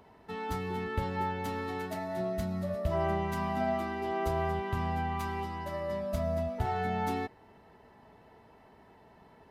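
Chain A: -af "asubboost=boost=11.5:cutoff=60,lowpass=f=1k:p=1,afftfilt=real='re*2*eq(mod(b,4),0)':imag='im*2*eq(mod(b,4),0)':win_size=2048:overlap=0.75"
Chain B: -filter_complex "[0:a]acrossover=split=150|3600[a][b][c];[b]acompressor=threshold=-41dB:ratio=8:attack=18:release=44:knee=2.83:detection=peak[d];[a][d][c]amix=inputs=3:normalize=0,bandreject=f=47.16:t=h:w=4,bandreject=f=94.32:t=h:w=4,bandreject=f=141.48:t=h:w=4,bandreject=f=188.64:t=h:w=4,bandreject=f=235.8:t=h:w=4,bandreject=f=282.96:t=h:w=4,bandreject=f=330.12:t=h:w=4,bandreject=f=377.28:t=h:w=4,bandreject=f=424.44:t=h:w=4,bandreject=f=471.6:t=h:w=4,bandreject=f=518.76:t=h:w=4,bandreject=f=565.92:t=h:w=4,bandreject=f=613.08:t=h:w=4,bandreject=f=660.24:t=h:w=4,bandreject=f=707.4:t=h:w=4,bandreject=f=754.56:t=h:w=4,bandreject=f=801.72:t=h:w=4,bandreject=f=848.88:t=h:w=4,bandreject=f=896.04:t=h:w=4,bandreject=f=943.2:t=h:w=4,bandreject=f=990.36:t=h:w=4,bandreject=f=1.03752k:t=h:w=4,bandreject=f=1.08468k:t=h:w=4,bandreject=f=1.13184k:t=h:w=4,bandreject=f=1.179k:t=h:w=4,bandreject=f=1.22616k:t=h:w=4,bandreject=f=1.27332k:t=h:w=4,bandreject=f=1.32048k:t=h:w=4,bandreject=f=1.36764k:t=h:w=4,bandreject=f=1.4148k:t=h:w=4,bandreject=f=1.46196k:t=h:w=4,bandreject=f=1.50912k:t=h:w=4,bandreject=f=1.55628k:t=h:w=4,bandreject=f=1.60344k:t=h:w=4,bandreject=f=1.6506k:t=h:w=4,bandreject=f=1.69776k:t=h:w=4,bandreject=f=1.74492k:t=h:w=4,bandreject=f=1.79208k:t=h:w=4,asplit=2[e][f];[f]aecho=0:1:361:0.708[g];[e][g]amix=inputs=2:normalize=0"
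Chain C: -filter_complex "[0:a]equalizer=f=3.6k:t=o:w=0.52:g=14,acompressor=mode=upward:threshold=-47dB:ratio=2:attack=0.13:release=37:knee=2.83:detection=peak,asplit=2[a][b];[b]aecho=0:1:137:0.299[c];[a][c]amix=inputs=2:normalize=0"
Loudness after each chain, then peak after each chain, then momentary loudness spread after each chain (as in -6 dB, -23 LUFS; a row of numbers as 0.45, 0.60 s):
-30.5, -37.5, -33.0 LUFS; -15.0, -20.0, -18.0 dBFS; 14, 21, 5 LU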